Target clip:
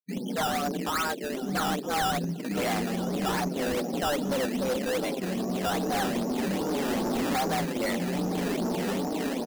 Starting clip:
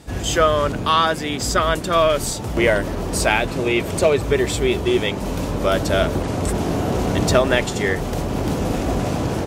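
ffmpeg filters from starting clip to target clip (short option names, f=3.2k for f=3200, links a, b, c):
-af "afftfilt=real='re*gte(hypot(re,im),0.0794)':imag='im*gte(hypot(re,im),0.0794)':win_size=1024:overlap=0.75,lowpass=2.1k,anlmdn=398,lowshelf=f=62:g=11,dynaudnorm=f=160:g=13:m=4.5dB,flanger=delay=6.2:depth=3.2:regen=22:speed=1.2:shape=sinusoidal,afreqshift=140,acrusher=samples=14:mix=1:aa=0.000001:lfo=1:lforange=14:lforate=2.5,volume=20.5dB,asoftclip=hard,volume=-20.5dB,aecho=1:1:965|1930:0.141|0.0339,volume=-4.5dB"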